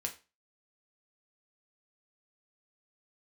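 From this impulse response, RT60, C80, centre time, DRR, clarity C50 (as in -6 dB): 0.30 s, 19.0 dB, 11 ms, 2.0 dB, 13.0 dB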